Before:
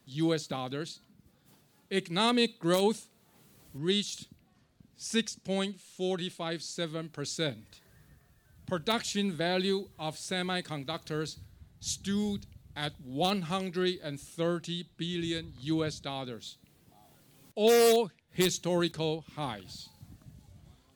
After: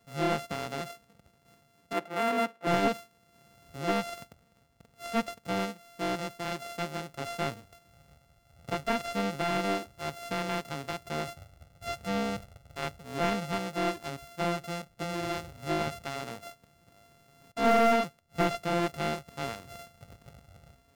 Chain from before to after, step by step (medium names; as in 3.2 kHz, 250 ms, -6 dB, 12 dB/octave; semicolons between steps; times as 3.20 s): sorted samples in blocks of 64 samples; 1.93–2.67 s: three-band isolator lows -14 dB, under 240 Hz, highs -14 dB, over 2.9 kHz; slew-rate limiter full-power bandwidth 170 Hz